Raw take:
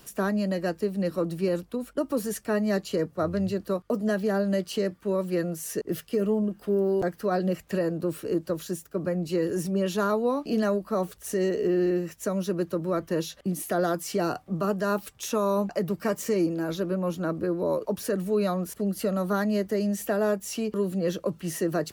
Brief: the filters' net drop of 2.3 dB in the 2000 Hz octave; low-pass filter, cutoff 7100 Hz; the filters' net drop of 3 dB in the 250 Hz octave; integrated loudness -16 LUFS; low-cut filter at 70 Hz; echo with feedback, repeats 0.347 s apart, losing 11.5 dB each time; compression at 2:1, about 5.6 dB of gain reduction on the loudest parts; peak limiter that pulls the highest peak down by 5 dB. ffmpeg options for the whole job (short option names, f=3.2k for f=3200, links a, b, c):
-af "highpass=70,lowpass=7.1k,equalizer=f=250:t=o:g=-4.5,equalizer=f=2k:t=o:g=-3,acompressor=threshold=-33dB:ratio=2,alimiter=level_in=2dB:limit=-24dB:level=0:latency=1,volume=-2dB,aecho=1:1:347|694|1041:0.266|0.0718|0.0194,volume=19.5dB"